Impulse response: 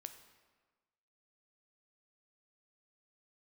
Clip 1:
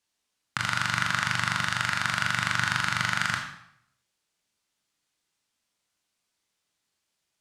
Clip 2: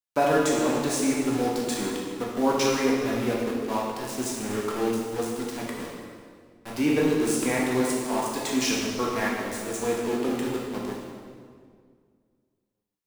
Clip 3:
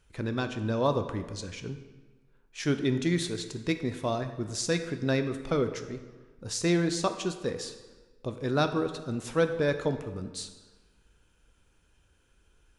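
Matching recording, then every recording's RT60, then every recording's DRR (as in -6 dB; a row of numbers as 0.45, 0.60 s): 3; 0.75, 2.0, 1.4 s; 1.0, -4.0, 8.0 dB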